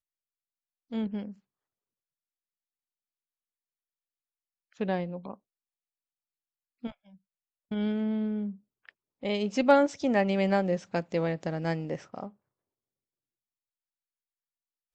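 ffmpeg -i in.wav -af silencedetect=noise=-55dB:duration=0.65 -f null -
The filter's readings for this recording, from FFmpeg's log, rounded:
silence_start: 0.00
silence_end: 0.91 | silence_duration: 0.91
silence_start: 1.38
silence_end: 4.72 | silence_duration: 3.35
silence_start: 5.36
silence_end: 6.83 | silence_duration: 1.47
silence_start: 12.33
silence_end: 14.94 | silence_duration: 2.61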